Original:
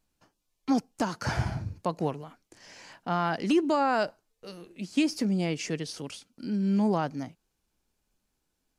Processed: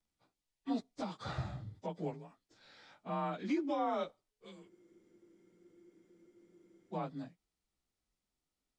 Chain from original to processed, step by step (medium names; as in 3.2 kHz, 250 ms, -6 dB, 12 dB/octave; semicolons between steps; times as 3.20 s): frequency axis rescaled in octaves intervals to 91%; spectral freeze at 4.72 s, 2.21 s; trim -8 dB